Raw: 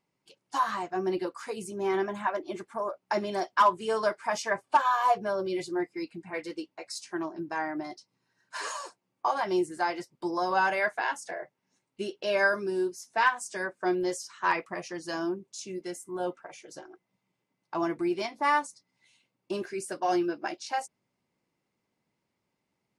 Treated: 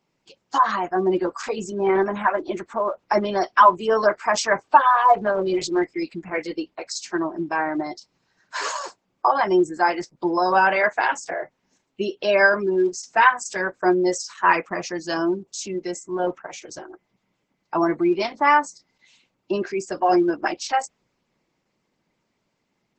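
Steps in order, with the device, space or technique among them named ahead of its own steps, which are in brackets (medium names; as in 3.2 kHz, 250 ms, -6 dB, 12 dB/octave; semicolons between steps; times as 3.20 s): 15.74–16.68 s: high-pass 87 Hz 12 dB/octave; noise-suppressed video call (high-pass 120 Hz 24 dB/octave; spectral gate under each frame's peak -30 dB strong; trim +9 dB; Opus 12 kbps 48 kHz)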